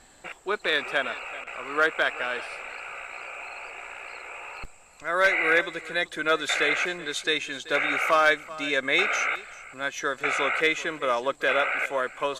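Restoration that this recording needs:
clipped peaks rebuilt −12 dBFS
downward expander −37 dBFS, range −21 dB
echo removal 383 ms −18 dB

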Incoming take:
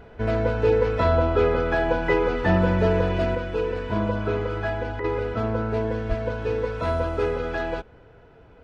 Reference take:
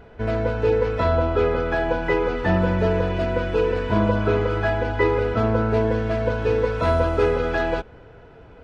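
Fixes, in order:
0:06.08–0:06.20: high-pass filter 140 Hz 24 dB per octave
repair the gap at 0:05.00, 40 ms
0:03.35: level correction +5 dB

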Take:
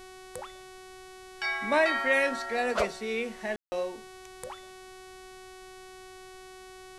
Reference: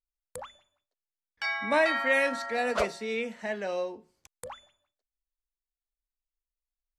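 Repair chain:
hum removal 373.3 Hz, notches 32
ambience match 0:03.56–0:03.72
downward expander −40 dBFS, range −21 dB

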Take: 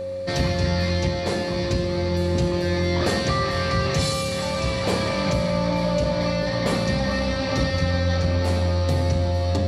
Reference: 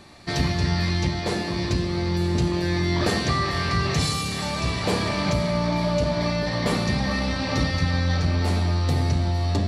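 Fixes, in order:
hum removal 93.9 Hz, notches 5
notch filter 540 Hz, Q 30

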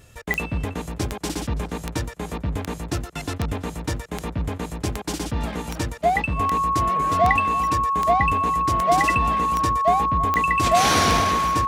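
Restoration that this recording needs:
click removal
notch filter 1,100 Hz, Q 30
echo removal 329 ms −21 dB

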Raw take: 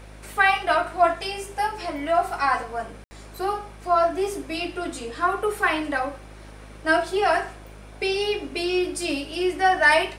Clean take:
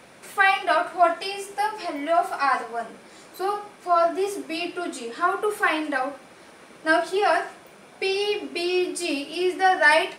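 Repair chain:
hum removal 52.1 Hz, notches 18
ambience match 0:03.04–0:03.11

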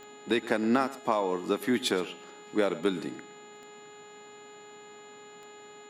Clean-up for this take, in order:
click removal
hum removal 417.4 Hz, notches 10
notch filter 7,000 Hz, Q 30
echo removal 117 ms −18 dB

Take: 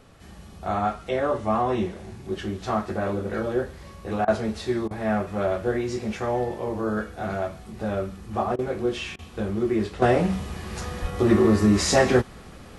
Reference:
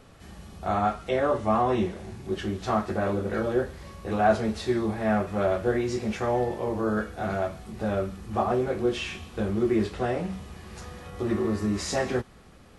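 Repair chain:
0:11.01–0:11.13: high-pass filter 140 Hz 24 dB per octave
repair the gap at 0:04.25/0:04.88/0:08.56/0:09.16, 27 ms
level 0 dB, from 0:10.02 −8.5 dB

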